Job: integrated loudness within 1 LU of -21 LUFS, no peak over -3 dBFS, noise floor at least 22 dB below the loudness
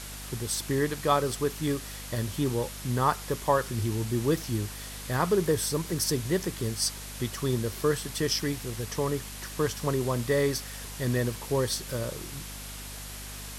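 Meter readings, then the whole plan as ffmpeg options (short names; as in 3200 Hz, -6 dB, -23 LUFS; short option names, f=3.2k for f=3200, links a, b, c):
hum 50 Hz; harmonics up to 250 Hz; hum level -41 dBFS; noise floor -40 dBFS; noise floor target -52 dBFS; loudness -29.5 LUFS; peak -10.0 dBFS; loudness target -21.0 LUFS
-> -af "bandreject=f=50:t=h:w=4,bandreject=f=100:t=h:w=4,bandreject=f=150:t=h:w=4,bandreject=f=200:t=h:w=4,bandreject=f=250:t=h:w=4"
-af "afftdn=nr=12:nf=-40"
-af "volume=8.5dB,alimiter=limit=-3dB:level=0:latency=1"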